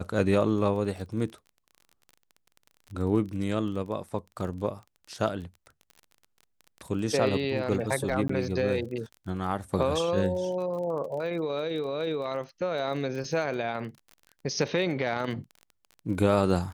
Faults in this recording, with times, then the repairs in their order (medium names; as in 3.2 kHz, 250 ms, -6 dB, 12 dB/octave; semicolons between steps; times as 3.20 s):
crackle 25 per s -37 dBFS
8.28–8.29 s: dropout 14 ms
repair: de-click; interpolate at 8.28 s, 14 ms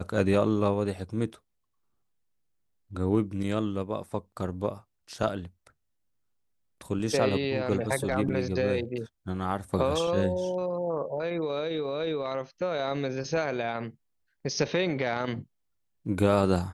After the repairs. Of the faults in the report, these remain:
nothing left